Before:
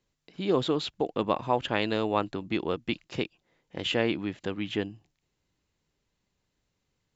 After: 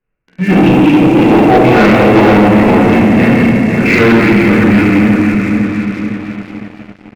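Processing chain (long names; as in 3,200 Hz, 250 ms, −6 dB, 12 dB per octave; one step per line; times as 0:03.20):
feedback delay that plays each chunk backwards 254 ms, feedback 70%, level −4.5 dB
downsampling to 8,000 Hz
formants moved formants −5 semitones
convolution reverb RT60 1.9 s, pre-delay 5 ms, DRR −11 dB
leveller curve on the samples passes 3
level +1 dB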